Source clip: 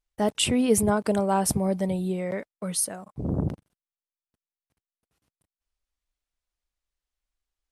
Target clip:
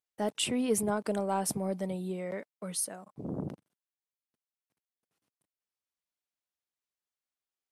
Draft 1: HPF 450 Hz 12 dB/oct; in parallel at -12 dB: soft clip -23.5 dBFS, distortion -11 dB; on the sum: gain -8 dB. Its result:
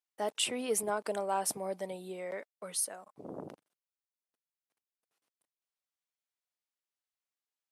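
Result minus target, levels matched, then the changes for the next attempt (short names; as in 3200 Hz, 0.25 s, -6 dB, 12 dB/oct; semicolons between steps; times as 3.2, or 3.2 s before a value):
125 Hz band -11.5 dB
change: HPF 170 Hz 12 dB/oct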